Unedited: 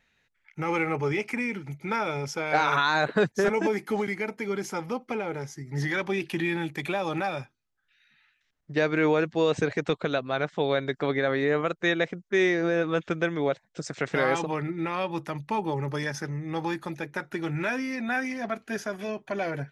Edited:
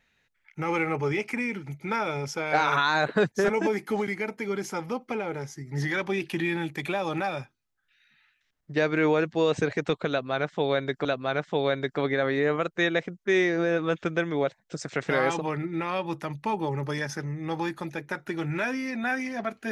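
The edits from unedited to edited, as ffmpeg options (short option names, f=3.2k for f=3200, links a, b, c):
-filter_complex "[0:a]asplit=2[a][b];[a]atrim=end=11.052[c];[b]atrim=start=10.098[d];[c][d]acrossfade=d=0.004:c1=hsin:c2=hsin"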